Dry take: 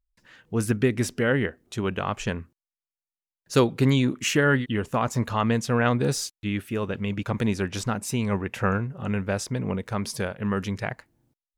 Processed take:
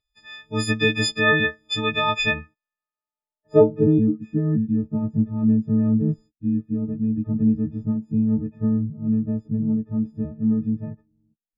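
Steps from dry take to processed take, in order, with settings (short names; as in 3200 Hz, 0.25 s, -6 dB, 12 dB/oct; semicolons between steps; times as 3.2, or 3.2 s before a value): frequency quantiser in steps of 6 st; low-pass sweep 3700 Hz -> 230 Hz, 2.08–4.3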